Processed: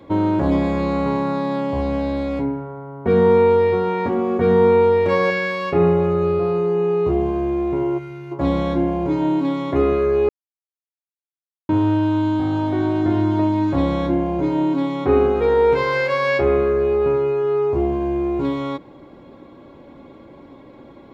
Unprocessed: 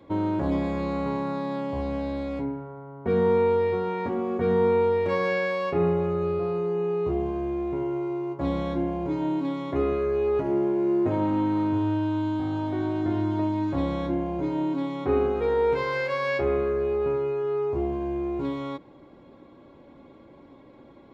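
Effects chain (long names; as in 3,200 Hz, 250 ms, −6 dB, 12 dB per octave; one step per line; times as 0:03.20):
0:05.30–0:05.73: parametric band 660 Hz −10 dB 0.83 octaves
0:07.98–0:08.32: gain on a spectral selection 250–1,300 Hz −14 dB
0:10.29–0:11.69: silence
level +7.5 dB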